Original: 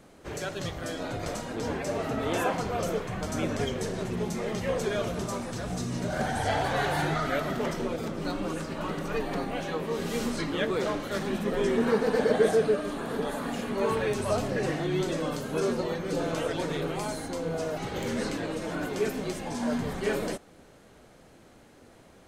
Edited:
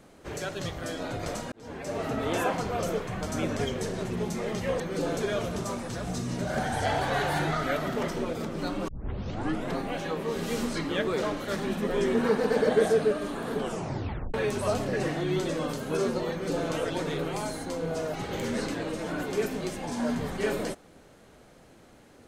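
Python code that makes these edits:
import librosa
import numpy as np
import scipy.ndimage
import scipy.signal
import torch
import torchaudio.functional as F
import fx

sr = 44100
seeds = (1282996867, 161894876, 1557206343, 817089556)

y = fx.edit(x, sr, fx.fade_in_span(start_s=1.52, length_s=0.53),
    fx.tape_start(start_s=8.51, length_s=0.9),
    fx.tape_stop(start_s=13.19, length_s=0.78),
    fx.duplicate(start_s=15.94, length_s=0.37, to_s=4.8), tone=tone)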